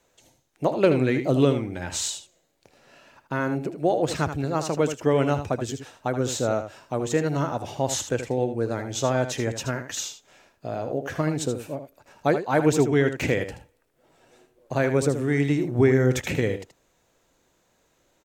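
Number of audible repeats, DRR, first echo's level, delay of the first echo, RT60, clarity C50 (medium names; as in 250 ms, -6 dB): 1, no reverb, -9.5 dB, 78 ms, no reverb, no reverb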